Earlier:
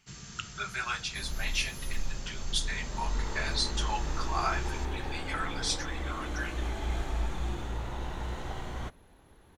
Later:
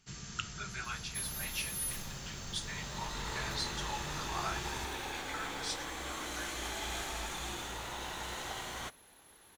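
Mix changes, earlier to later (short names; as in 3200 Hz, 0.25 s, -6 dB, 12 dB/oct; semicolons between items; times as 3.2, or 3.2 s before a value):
speech -8.0 dB; second sound: add tilt +3.5 dB/oct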